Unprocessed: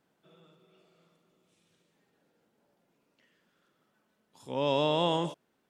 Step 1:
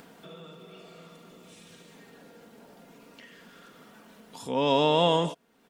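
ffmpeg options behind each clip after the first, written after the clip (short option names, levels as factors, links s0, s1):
-filter_complex "[0:a]aecho=1:1:4.3:0.42,asplit=2[s0][s1];[s1]acompressor=mode=upward:threshold=0.0282:ratio=2.5,volume=0.708[s2];[s0][s2]amix=inputs=2:normalize=0"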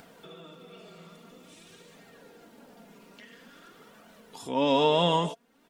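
-af "flanger=delay=1.3:depth=4.1:regen=45:speed=0.49:shape=triangular,volume=1.5"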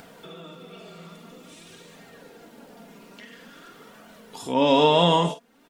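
-filter_complex "[0:a]asplit=2[s0][s1];[s1]adelay=47,volume=0.316[s2];[s0][s2]amix=inputs=2:normalize=0,volume=1.78"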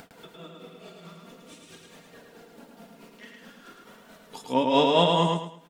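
-af "tremolo=f=4.6:d=0.98,aecho=1:1:108|216|324|432:0.668|0.194|0.0562|0.0163"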